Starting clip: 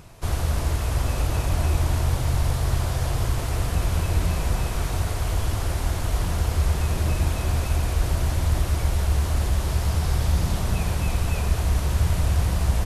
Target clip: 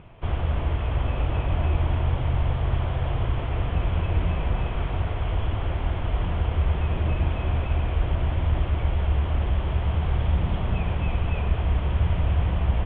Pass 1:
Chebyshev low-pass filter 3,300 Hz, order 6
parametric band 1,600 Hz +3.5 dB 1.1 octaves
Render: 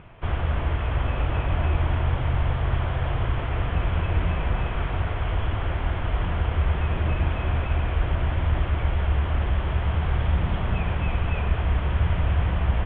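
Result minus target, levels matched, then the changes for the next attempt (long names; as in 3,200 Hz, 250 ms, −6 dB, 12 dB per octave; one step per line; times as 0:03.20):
2,000 Hz band +4.0 dB
change: parametric band 1,600 Hz −2.5 dB 1.1 octaves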